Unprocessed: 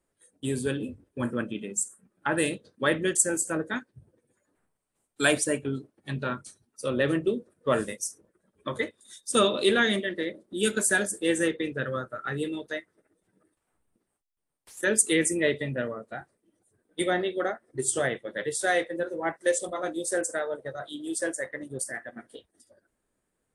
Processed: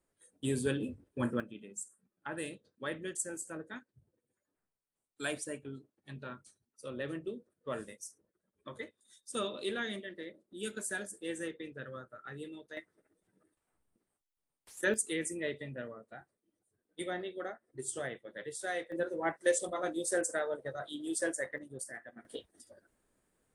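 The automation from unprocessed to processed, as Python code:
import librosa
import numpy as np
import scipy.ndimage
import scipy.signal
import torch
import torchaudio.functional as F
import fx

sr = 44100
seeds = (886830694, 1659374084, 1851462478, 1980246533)

y = fx.gain(x, sr, db=fx.steps((0.0, -3.5), (1.4, -14.0), (12.77, -5.0), (14.94, -12.0), (18.92, -4.0), (21.58, -10.0), (22.25, 2.0)))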